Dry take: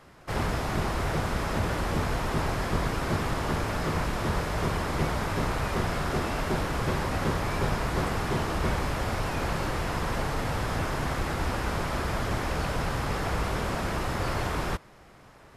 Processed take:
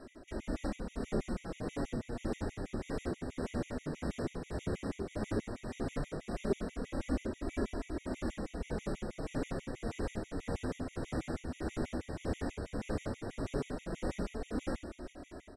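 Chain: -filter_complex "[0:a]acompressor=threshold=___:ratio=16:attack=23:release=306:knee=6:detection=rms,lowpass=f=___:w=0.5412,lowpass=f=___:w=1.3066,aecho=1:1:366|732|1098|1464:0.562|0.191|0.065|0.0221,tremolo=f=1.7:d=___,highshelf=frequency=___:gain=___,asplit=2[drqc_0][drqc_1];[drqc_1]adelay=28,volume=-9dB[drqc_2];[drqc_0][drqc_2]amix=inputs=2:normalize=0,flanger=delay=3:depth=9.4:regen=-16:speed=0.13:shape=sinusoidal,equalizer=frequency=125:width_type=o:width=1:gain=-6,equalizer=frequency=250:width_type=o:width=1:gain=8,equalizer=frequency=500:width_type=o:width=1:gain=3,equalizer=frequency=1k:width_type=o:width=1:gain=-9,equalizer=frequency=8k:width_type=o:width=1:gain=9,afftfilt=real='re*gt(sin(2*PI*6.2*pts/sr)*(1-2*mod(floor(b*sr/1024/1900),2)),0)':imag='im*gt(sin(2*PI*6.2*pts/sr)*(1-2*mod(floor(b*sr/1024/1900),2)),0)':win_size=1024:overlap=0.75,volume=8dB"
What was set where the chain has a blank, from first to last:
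-35dB, 11k, 11k, 0.47, 2.2k, -11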